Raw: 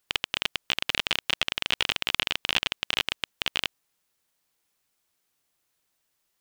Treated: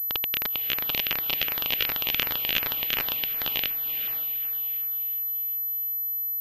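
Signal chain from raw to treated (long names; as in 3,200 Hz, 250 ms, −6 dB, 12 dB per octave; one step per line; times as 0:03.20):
feedback delay with all-pass diffusion 515 ms, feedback 42%, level −9 dB
auto-filter notch saw down 2.7 Hz 790–4,000 Hz
switching amplifier with a slow clock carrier 12,000 Hz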